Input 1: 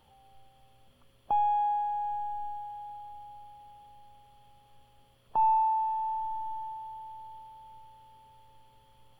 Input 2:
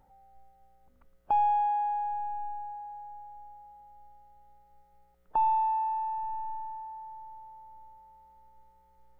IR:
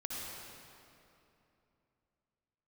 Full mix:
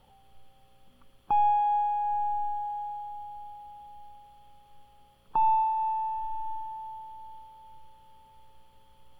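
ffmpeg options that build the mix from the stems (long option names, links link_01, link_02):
-filter_complex "[0:a]volume=-1.5dB,asplit=2[link_01][link_02];[link_02]volume=-10.5dB[link_03];[1:a]volume=-0.5dB[link_04];[2:a]atrim=start_sample=2205[link_05];[link_03][link_05]afir=irnorm=-1:irlink=0[link_06];[link_01][link_04][link_06]amix=inputs=3:normalize=0"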